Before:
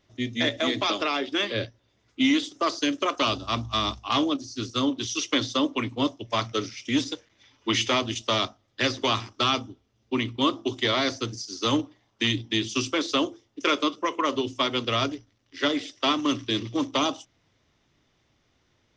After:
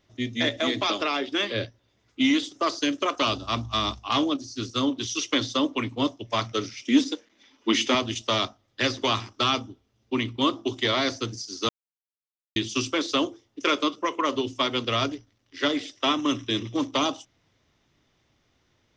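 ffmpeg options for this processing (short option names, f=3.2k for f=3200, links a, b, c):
-filter_complex "[0:a]asettb=1/sr,asplit=3[a][b][c];[a]atrim=end=6.824[d];[b]atrim=start=6.82:end=7.95,asetpts=PTS-STARTPTS,afade=t=in:d=0.004:c=qsin,afade=t=out:st=1.126:d=0.004:c=qsin,lowshelf=f=180:t=q:w=3:g=-9.5[e];[c]atrim=start=7.946[f];[d][e]acrossfade=d=0.004:c1=hsin:c2=qsin[g];[g][f]acrossfade=d=0.004:c1=qsin:c2=hsin,asettb=1/sr,asplit=3[h][i][j];[h]atrim=end=16.024[k];[i]atrim=start=16.02:end=16.75,asetpts=PTS-STARTPTS,afade=t=in:d=0.004:c=qsin,afade=t=out:st=0.726:d=0.004:c=qsin,asuperstop=centerf=4500:order=4:qfactor=5.8[l];[j]atrim=start=16.746[m];[k][l]acrossfade=d=0.004:c1=hsin:c2=qsin[n];[n][m]acrossfade=d=0.004:c1=qsin:c2=hsin,asplit=3[o][p][q];[o]atrim=end=11.69,asetpts=PTS-STARTPTS,afade=t=out:st=11.686:d=0.004:c=hsin[r];[p]atrim=start=11.69:end=12.56,asetpts=PTS-STARTPTS,volume=0[s];[q]atrim=start=12.56,asetpts=PTS-STARTPTS,afade=t=in:d=0.004:c=hsin[t];[r][s][t]concat=n=3:v=0:a=1"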